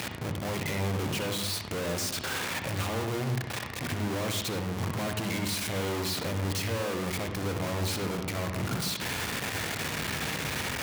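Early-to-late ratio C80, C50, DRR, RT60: 8.0 dB, 4.5 dB, 4.5 dB, 0.80 s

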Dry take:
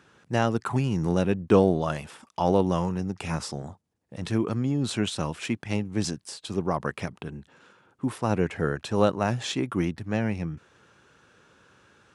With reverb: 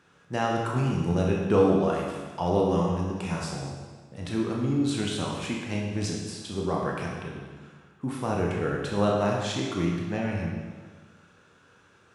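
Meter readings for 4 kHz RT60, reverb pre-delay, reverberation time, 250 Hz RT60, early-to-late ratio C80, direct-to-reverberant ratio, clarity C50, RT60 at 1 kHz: 1.4 s, 21 ms, 1.5 s, 1.5 s, 3.0 dB, −2.0 dB, 1.5 dB, 1.5 s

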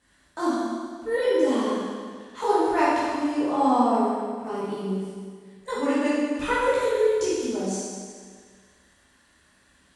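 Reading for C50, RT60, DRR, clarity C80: −3.0 dB, 1.8 s, −10.0 dB, −0.5 dB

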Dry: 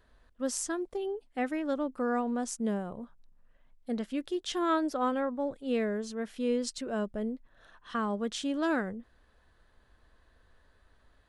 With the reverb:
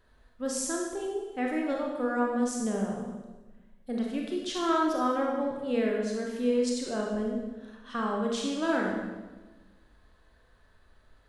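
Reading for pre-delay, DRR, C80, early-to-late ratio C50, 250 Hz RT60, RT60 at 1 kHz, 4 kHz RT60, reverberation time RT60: 29 ms, −1.0 dB, 4.0 dB, 1.5 dB, 1.5 s, 1.1 s, 1.1 s, 1.2 s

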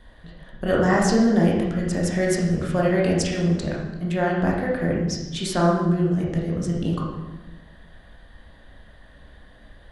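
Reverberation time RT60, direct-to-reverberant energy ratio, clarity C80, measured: 1.1 s, −3.5 dB, 5.0 dB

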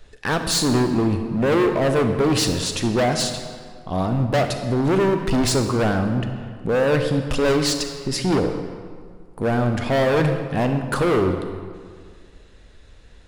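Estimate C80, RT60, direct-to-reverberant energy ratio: 8.0 dB, 1.9 s, 6.0 dB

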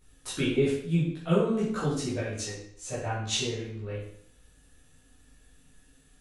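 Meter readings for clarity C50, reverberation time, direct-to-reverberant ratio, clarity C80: 2.0 dB, 0.65 s, −9.5 dB, 6.5 dB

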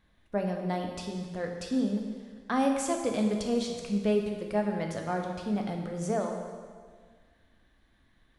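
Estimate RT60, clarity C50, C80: 1.7 s, 4.0 dB, 5.5 dB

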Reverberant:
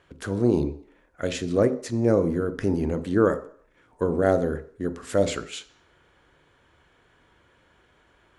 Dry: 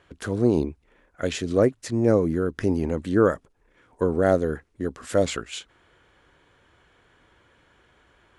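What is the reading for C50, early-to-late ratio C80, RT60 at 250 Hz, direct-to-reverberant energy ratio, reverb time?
14.5 dB, 17.5 dB, 0.50 s, 11.0 dB, 0.55 s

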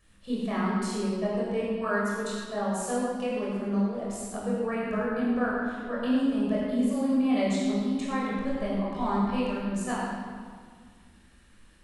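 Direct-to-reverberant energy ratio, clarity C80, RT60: −7.5 dB, −0.5 dB, 1.8 s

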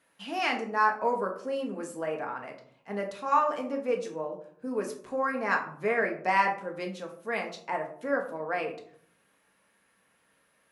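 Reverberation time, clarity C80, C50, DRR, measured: 0.60 s, 13.0 dB, 9.5 dB, 1.5 dB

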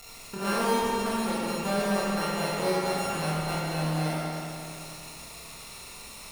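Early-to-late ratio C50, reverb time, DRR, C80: −3.5 dB, 2.7 s, −7.5 dB, −2.0 dB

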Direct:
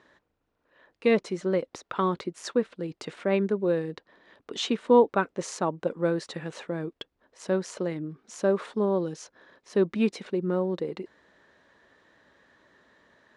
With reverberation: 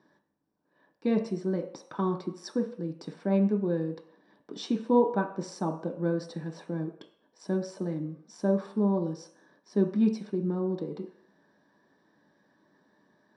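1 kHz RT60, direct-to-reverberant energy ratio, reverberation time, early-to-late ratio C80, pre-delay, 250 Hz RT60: 0.60 s, 3.0 dB, 0.60 s, 13.0 dB, 3 ms, 0.50 s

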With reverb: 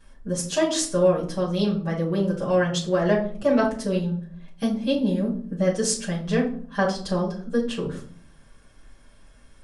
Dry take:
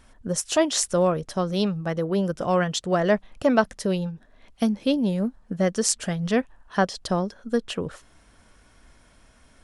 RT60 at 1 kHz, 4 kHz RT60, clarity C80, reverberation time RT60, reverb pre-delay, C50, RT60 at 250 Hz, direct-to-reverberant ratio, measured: 0.45 s, 0.35 s, 13.5 dB, 0.50 s, 5 ms, 8.5 dB, 0.85 s, −8.0 dB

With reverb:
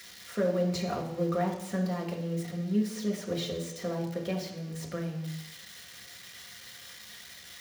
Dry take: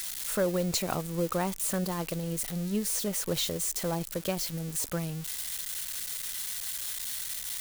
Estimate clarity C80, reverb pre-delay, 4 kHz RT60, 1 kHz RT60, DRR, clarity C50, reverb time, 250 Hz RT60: 9.5 dB, 3 ms, 0.95 s, 0.85 s, −1.0 dB, 7.0 dB, 0.85 s, 0.80 s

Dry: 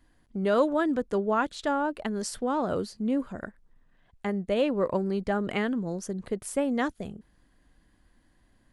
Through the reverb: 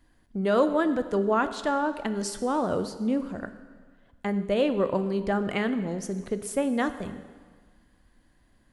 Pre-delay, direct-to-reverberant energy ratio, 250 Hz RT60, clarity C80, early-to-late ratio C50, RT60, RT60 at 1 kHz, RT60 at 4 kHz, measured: 6 ms, 10.0 dB, 1.6 s, 13.0 dB, 12.0 dB, 1.6 s, 1.6 s, 1.5 s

